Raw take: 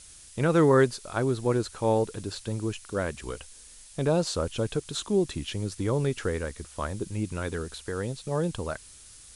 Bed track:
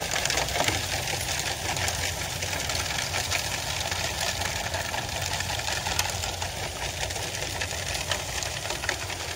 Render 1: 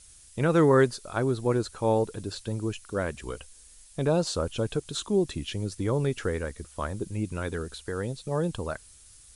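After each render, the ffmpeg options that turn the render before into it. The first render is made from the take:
-af "afftdn=nr=6:nf=-50"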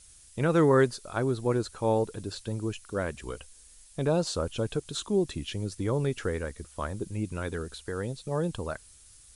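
-af "volume=0.841"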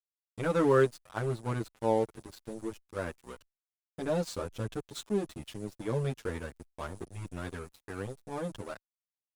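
-filter_complex "[0:a]aeval=exprs='sgn(val(0))*max(abs(val(0))-0.0126,0)':c=same,asplit=2[s0][s1];[s1]adelay=7.9,afreqshift=0.26[s2];[s0][s2]amix=inputs=2:normalize=1"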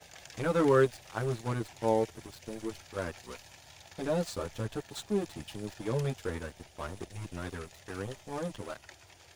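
-filter_complex "[1:a]volume=0.0631[s0];[0:a][s0]amix=inputs=2:normalize=0"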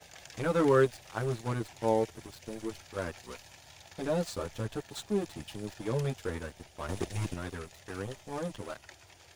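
-filter_complex "[0:a]asplit=3[s0][s1][s2];[s0]atrim=end=6.892[s3];[s1]atrim=start=6.888:end=7.342,asetpts=PTS-STARTPTS,volume=2.37[s4];[s2]atrim=start=7.338[s5];[s3][s4]acrossfade=d=0.004:c1=hsin:c2=hsin[s6];[s6][s5]acrossfade=d=0.004:c1=hsin:c2=hsin"

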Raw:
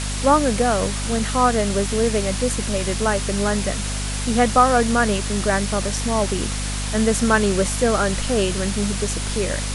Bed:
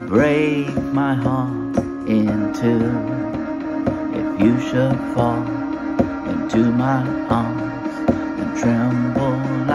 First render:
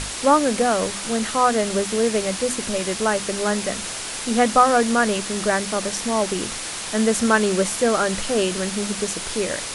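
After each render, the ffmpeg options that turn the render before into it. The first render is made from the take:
-af "bandreject=f=50:t=h:w=6,bandreject=f=100:t=h:w=6,bandreject=f=150:t=h:w=6,bandreject=f=200:t=h:w=6,bandreject=f=250:t=h:w=6"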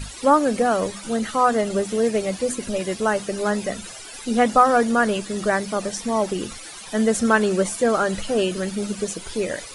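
-af "afftdn=nr=15:nf=-30"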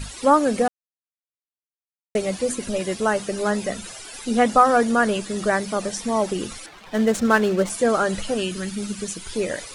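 -filter_complex "[0:a]asettb=1/sr,asplit=3[s0][s1][s2];[s0]atrim=end=6.664[s3];[s1]atrim=start=6.66:end=7.7,asetpts=PTS-STARTPTS,afade=t=in:d=0.004:c=qsin,afade=t=out:st=1.036:d=0.004:c=qsin,adynamicsmooth=sensitivity=8:basefreq=1200[s4];[s2]atrim=start=7.696[s5];[s3][s4]acrossfade=d=0.004:c1=hsin:c2=qsin[s6];[s6][s5]acrossfade=d=0.004:c1=qsin:c2=hsin,asettb=1/sr,asplit=3[s7][s8][s9];[s7]atrim=end=8.344[s10];[s8]atrim=start=8.34:end=9.33,asetpts=PTS-STARTPTS,afade=t=in:d=0.004:c=qsin,afade=t=out:st=0.986:d=0.004:c=qsin,equalizer=f=560:w=1.1:g=-9.5[s11];[s9]atrim=start=9.326[s12];[s10][s11]acrossfade=d=0.004:c1=hsin:c2=qsin[s13];[s13][s12]acrossfade=d=0.004:c1=qsin:c2=hsin,asplit=3[s14][s15][s16];[s14]atrim=end=0.68,asetpts=PTS-STARTPTS,afade=t=out:st=0.676:d=0.004:c=hsin[s17];[s15]atrim=start=0.68:end=2.15,asetpts=PTS-STARTPTS,volume=0[s18];[s16]atrim=start=2.15,asetpts=PTS-STARTPTS,afade=t=in:d=0.004:c=hsin[s19];[s17][s18][s19]concat=n=3:v=0:a=1"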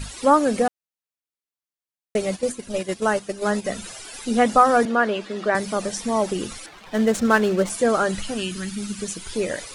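-filter_complex "[0:a]asplit=3[s0][s1][s2];[s0]afade=t=out:st=2.35:d=0.02[s3];[s1]agate=range=0.355:threshold=0.0501:ratio=16:release=100:detection=peak,afade=t=in:st=2.35:d=0.02,afade=t=out:st=3.64:d=0.02[s4];[s2]afade=t=in:st=3.64:d=0.02[s5];[s3][s4][s5]amix=inputs=3:normalize=0,asettb=1/sr,asplit=3[s6][s7][s8];[s6]atrim=end=4.854[s9];[s7]atrim=start=4.85:end=5.55,asetpts=PTS-STARTPTS,afade=t=in:d=0.004:c=qsin,afade=t=out:st=0.696:d=0.004:c=qsin,acrossover=split=210 4500:gain=0.126 1 0.1[s10][s11][s12];[s10][s11][s12]amix=inputs=3:normalize=0[s13];[s8]atrim=start=5.546[s14];[s9][s13]acrossfade=d=0.004:c1=hsin:c2=qsin[s15];[s15][s14]acrossfade=d=0.004:c1=qsin:c2=hsin,asettb=1/sr,asplit=3[s16][s17][s18];[s16]atrim=end=8.114[s19];[s17]atrim=start=8.11:end=8.99,asetpts=PTS-STARTPTS,afade=t=in:d=0.004:c=qsin,afade=t=out:st=0.876:d=0.004:c=qsin,equalizer=f=520:w=1.5:g=-8[s20];[s18]atrim=start=8.986[s21];[s19][s20]acrossfade=d=0.004:c1=hsin:c2=qsin[s22];[s22][s21]acrossfade=d=0.004:c1=qsin:c2=hsin"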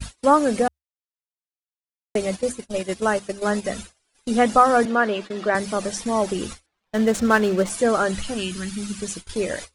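-af "agate=range=0.0224:threshold=0.0224:ratio=16:detection=peak,equalizer=f=72:t=o:w=0.35:g=8"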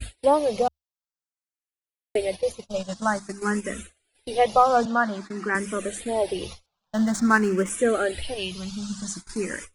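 -filter_complex "[0:a]asplit=2[s0][s1];[s1]afreqshift=0.5[s2];[s0][s2]amix=inputs=2:normalize=1"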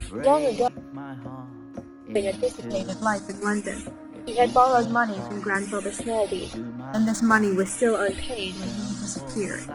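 -filter_complex "[1:a]volume=0.119[s0];[0:a][s0]amix=inputs=2:normalize=0"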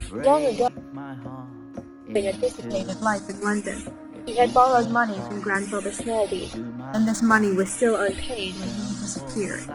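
-af "volume=1.12"

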